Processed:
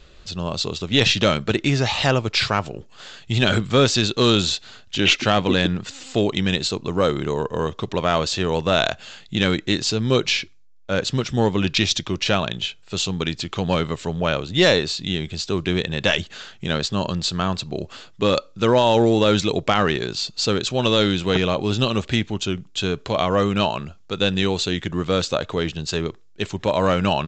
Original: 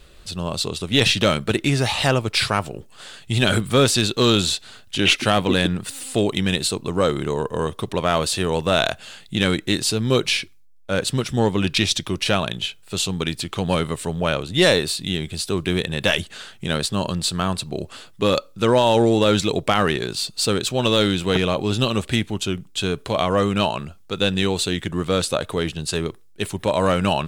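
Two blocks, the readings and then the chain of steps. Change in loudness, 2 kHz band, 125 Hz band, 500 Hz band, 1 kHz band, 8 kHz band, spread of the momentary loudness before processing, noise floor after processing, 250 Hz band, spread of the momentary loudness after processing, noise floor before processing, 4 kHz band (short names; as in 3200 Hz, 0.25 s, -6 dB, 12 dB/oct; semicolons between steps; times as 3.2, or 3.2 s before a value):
0.0 dB, 0.0 dB, 0.0 dB, 0.0 dB, 0.0 dB, -3.5 dB, 9 LU, -47 dBFS, 0.0 dB, 9 LU, -47 dBFS, 0.0 dB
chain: downsampling 16000 Hz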